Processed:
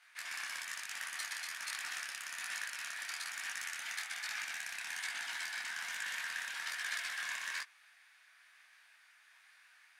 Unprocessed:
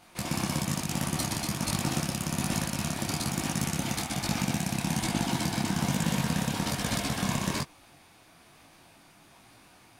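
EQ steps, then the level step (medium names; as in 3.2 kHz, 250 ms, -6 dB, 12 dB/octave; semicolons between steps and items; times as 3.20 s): band-pass filter 1.7 kHz, Q 4; differentiator; +15.0 dB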